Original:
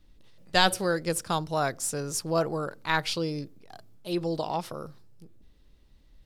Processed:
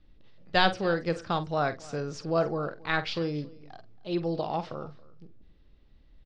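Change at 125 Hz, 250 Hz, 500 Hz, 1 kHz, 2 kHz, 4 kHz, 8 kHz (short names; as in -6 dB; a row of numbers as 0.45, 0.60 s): 0.0, 0.0, 0.0, -1.0, -0.5, -3.5, -18.5 dB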